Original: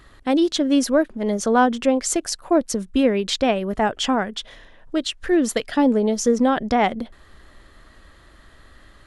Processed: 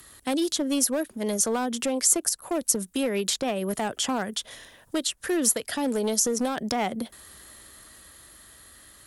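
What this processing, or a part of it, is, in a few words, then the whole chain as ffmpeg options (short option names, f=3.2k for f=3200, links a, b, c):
FM broadcast chain: -filter_complex "[0:a]highpass=62,dynaudnorm=f=210:g=17:m=4dB,acrossover=split=91|430|1600[a][b][c][d];[a]acompressor=threshold=-55dB:ratio=4[e];[b]acompressor=threshold=-22dB:ratio=4[f];[c]acompressor=threshold=-20dB:ratio=4[g];[d]acompressor=threshold=-34dB:ratio=4[h];[e][f][g][h]amix=inputs=4:normalize=0,aemphasis=mode=production:type=50fm,alimiter=limit=-13dB:level=0:latency=1:release=112,asoftclip=type=hard:threshold=-16dB,lowpass=f=15k:w=0.5412,lowpass=f=15k:w=1.3066,aemphasis=mode=production:type=50fm,volume=-4dB"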